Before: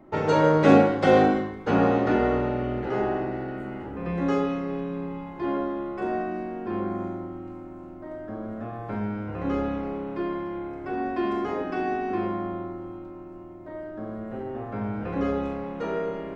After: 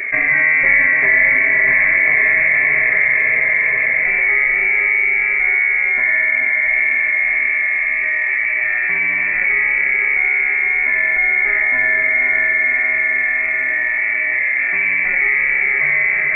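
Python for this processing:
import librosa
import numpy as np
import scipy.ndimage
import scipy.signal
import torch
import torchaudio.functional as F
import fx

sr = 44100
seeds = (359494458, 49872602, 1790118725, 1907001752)

p1 = fx.highpass(x, sr, hz=220.0, slope=6)
p2 = fx.band_shelf(p1, sr, hz=1200.0, db=-12.0, octaves=1.0)
p3 = p2 + fx.echo_diffused(p2, sr, ms=515, feedback_pct=59, wet_db=-3.0, dry=0)
p4 = fx.freq_invert(p3, sr, carrier_hz=2500)
p5 = fx.env_flatten(p4, sr, amount_pct=70)
y = F.gain(torch.from_numpy(p5), 3.0).numpy()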